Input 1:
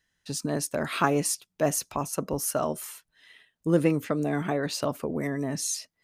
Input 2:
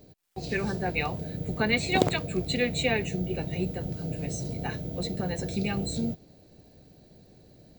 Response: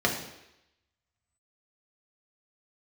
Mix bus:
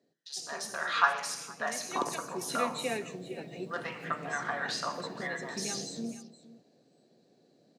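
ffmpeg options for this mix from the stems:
-filter_complex "[0:a]highpass=frequency=950:width=0.5412,highpass=frequency=950:width=1.3066,afwtdn=0.00631,volume=-2.5dB,asplit=3[link_01][link_02][link_03];[link_02]volume=-9dB[link_04];[link_03]volume=-19dB[link_05];[1:a]highpass=frequency=180:width=0.5412,highpass=frequency=180:width=1.3066,volume=-8.5dB,afade=type=in:start_time=1.74:duration=0.7:silence=0.298538,asplit=3[link_06][link_07][link_08];[link_07]volume=-23.5dB[link_09];[link_08]volume=-16dB[link_10];[2:a]atrim=start_sample=2205[link_11];[link_04][link_09]amix=inputs=2:normalize=0[link_12];[link_12][link_11]afir=irnorm=-1:irlink=0[link_13];[link_05][link_10]amix=inputs=2:normalize=0,aecho=0:1:466:1[link_14];[link_01][link_06][link_13][link_14]amix=inputs=4:normalize=0,lowpass=9700,acrossover=split=4100[link_15][link_16];[link_16]acompressor=threshold=-37dB:ratio=4:attack=1:release=60[link_17];[link_15][link_17]amix=inputs=2:normalize=0"

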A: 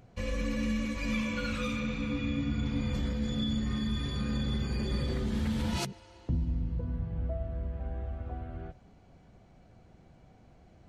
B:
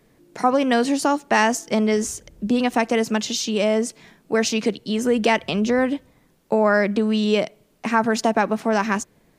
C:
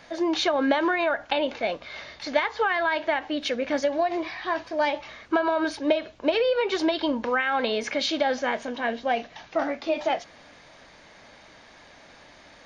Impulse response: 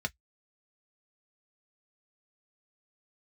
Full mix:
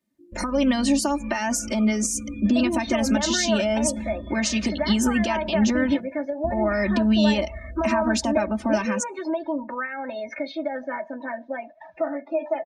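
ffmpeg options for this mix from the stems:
-filter_complex "[0:a]lowpass=1900,tremolo=f=7.3:d=0.33,adelay=150,volume=-4.5dB[link_01];[1:a]acompressor=threshold=-19dB:ratio=4,highpass=94,volume=-1dB[link_02];[2:a]acompressor=threshold=-43dB:ratio=2,adelay=2450,volume=-0.5dB,asplit=2[link_03][link_04];[link_04]volume=-4dB[link_05];[link_01][link_02]amix=inputs=2:normalize=0,highshelf=frequency=2800:gain=8,alimiter=limit=-17dB:level=0:latency=1:release=196,volume=0dB[link_06];[3:a]atrim=start_sample=2205[link_07];[link_05][link_07]afir=irnorm=-1:irlink=0[link_08];[link_03][link_06][link_08]amix=inputs=3:normalize=0,afftdn=noise_reduction=26:noise_floor=-42,equalizer=frequency=200:width=3.4:gain=7.5,aecho=1:1:3.3:0.99"

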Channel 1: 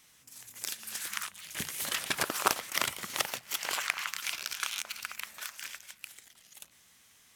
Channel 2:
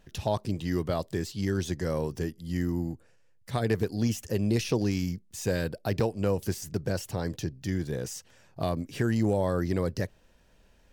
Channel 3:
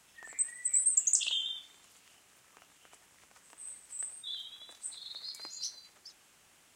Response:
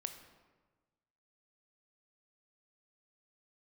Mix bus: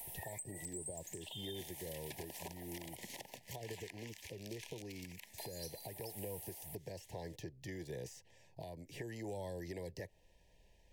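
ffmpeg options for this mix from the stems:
-filter_complex "[0:a]volume=-3dB[link_01];[1:a]acrossover=split=280|2400|6000[link_02][link_03][link_04][link_05];[link_02]acompressor=threshold=-34dB:ratio=4[link_06];[link_03]acompressor=threshold=-32dB:ratio=4[link_07];[link_04]acompressor=threshold=-57dB:ratio=4[link_08];[link_05]acompressor=threshold=-54dB:ratio=4[link_09];[link_06][link_07][link_08][link_09]amix=inputs=4:normalize=0,equalizer=frequency=240:width_type=o:width=0.56:gain=-9,acontrast=71,volume=-12dB,asplit=2[link_10][link_11];[2:a]equalizer=frequency=720:width_type=o:width=1.4:gain=14,acompressor=threshold=-34dB:ratio=6,aexciter=amount=9.5:drive=9.4:freq=9800,volume=2dB,asplit=3[link_12][link_13][link_14];[link_12]atrim=end=2.96,asetpts=PTS-STARTPTS,afade=type=out:start_time=2.956:duration=0.004:curve=hsin[link_15];[link_13]atrim=start=2.96:end=5.38,asetpts=PTS-STARTPTS,volume=0[link_16];[link_14]atrim=start=5.38,asetpts=PTS-STARTPTS,afade=type=in:duration=0.004:curve=hsin[link_17];[link_15][link_16][link_17]concat=n=3:v=0:a=1[link_18];[link_11]apad=whole_len=324313[link_19];[link_01][link_19]sidechaincompress=threshold=-45dB:ratio=3:attack=16:release=203[link_20];[link_20][link_10][link_18]amix=inputs=3:normalize=0,acrossover=split=290|940[link_21][link_22][link_23];[link_21]acompressor=threshold=-48dB:ratio=4[link_24];[link_22]acompressor=threshold=-44dB:ratio=4[link_25];[link_23]acompressor=threshold=-46dB:ratio=4[link_26];[link_24][link_25][link_26]amix=inputs=3:normalize=0,asuperstop=centerf=1300:order=12:qfactor=1.8,alimiter=level_in=10dB:limit=-24dB:level=0:latency=1:release=374,volume=-10dB"

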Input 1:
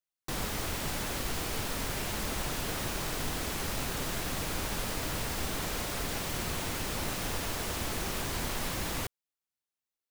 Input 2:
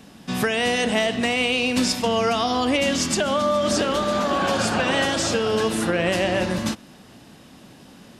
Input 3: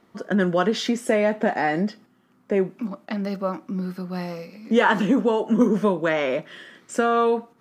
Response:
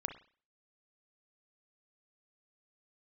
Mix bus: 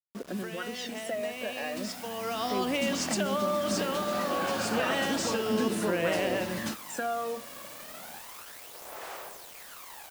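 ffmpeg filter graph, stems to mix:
-filter_complex "[0:a]highpass=frequency=530:width=0.5412,highpass=frequency=530:width=1.3066,equalizer=frequency=5300:width=0.47:gain=-8.5,adelay=1050,volume=-12.5dB[link_01];[1:a]highpass=frequency=160:poles=1,equalizer=frequency=3400:width_type=o:width=0.2:gain=-3.5,volume=-12dB,afade=type=in:start_time=2.17:duration=0.28:silence=0.446684[link_02];[2:a]highpass=frequency=190:width=0.5412,highpass=frequency=190:width=1.3066,bandreject=frequency=60:width_type=h:width=6,bandreject=frequency=120:width_type=h:width=6,bandreject=frequency=180:width_type=h:width=6,bandreject=frequency=240:width_type=h:width=6,bandreject=frequency=300:width_type=h:width=6,volume=-10.5dB[link_03];[link_01][link_03]amix=inputs=2:normalize=0,aphaser=in_gain=1:out_gain=1:delay=1.8:decay=0.69:speed=0.33:type=sinusoidal,acompressor=threshold=-36dB:ratio=3,volume=0dB[link_04];[link_02][link_04]amix=inputs=2:normalize=0,acrusher=bits=7:mix=0:aa=0.000001,dynaudnorm=framelen=700:gausssize=5:maxgain=4dB"

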